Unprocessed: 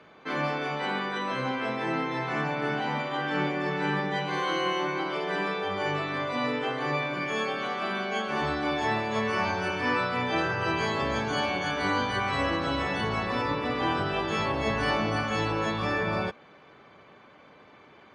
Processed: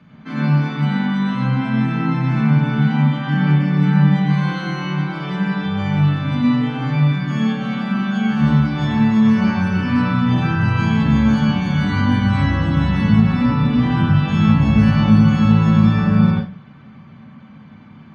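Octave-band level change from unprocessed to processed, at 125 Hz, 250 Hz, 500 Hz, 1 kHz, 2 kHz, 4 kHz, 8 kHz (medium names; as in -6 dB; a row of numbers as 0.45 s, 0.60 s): +21.0 dB, +17.5 dB, -2.5 dB, +2.0 dB, +3.0 dB, +2.5 dB, no reading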